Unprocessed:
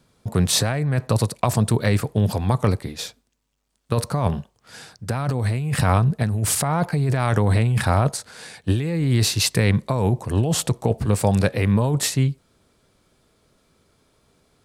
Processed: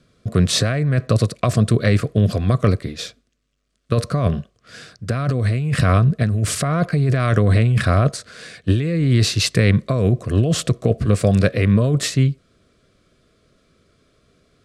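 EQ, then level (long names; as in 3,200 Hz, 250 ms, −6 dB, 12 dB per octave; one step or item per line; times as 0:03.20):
Butterworth band-reject 870 Hz, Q 2.4
high-frequency loss of the air 58 metres
+3.5 dB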